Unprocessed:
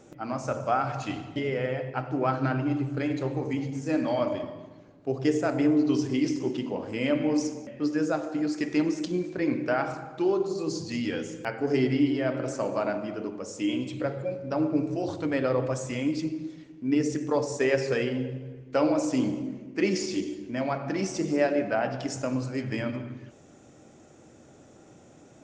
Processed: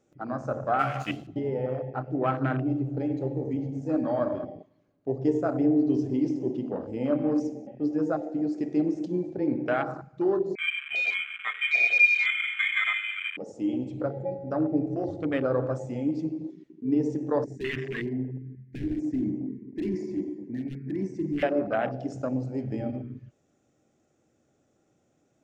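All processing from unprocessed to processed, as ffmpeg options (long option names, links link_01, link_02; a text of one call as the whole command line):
ffmpeg -i in.wav -filter_complex "[0:a]asettb=1/sr,asplit=3[link_01][link_02][link_03];[link_01]atrim=end=0.794[link_04];[link_02]atrim=start=0.79:end=1.27,asetpts=PTS-STARTPTS,afade=type=in:duration=0.004:curve=qsin,afade=type=out:start_time=0.476:duration=0.004:curve=qsin,aeval=exprs='sgn(val(0))*max(abs(val(0))-0.00631,0)':channel_layout=same,highshelf=frequency=2000:gain=11.5,asplit=2[link_05][link_06];[link_06]adelay=14,volume=-3.5dB[link_07];[link_05][link_07]amix=inputs=2:normalize=0,atrim=end_sample=21168[link_08];[link_03]atrim=start=1.266[link_09];[link_04][link_08]acrossfade=duration=0.004:curve1=hsin:curve2=qsin[link_10];[link_10][link_09]acrossfade=duration=0.004:curve1=qsin:curve2=hsin,asettb=1/sr,asplit=3[link_11][link_12][link_13];[link_11]atrim=end=10.554[link_14];[link_12]atrim=start=10.55:end=13.37,asetpts=PTS-STARTPTS,afade=type=in:duration=0.004:curve=qsin,afade=type=out:start_time=2.816:duration=0.004:curve=qsin,highpass=150,aecho=1:1:3.6:0.69,atrim=end_sample=124362,lowpass=frequency=2300:width_type=q:width=0.5098,lowpass=frequency=2300:width_type=q:width=0.6013,lowpass=frequency=2300:width_type=q:width=0.9,lowpass=frequency=2300:width_type=q:width=2.563,afreqshift=-2700[link_15];[link_13]atrim=start=13.366[link_16];[link_14][link_15]acrossfade=duration=0.004:curve1=hsin:curve2=qsin[link_17];[link_17][link_16]acrossfade=duration=0.004:curve1=qsin:curve2=hsin,asettb=1/sr,asplit=3[link_18][link_19][link_20];[link_18]atrim=end=17.444[link_21];[link_19]atrim=start=17.44:end=21.43,asetpts=PTS-STARTPTS,afade=type=in:duration=0.004:curve=qsin,afade=type=out:start_time=3.986:duration=0.004:curve=qsin,highshelf=frequency=2400:width_type=q:width=3:gain=-7,aeval=exprs='0.0841*(abs(mod(val(0)/0.0841+3,4)-2)-1)':channel_layout=same,asuperstop=centerf=810:order=12:qfactor=0.64[link_22];[link_20]atrim=start=21.426[link_23];[link_21][link_22]acrossfade=duration=0.004:curve1=hsin:curve2=qsin[link_24];[link_24][link_23]acrossfade=duration=0.004:curve1=qsin:curve2=hsin,afwtdn=0.0251,bandreject=frequency=940:width=9.7" out.wav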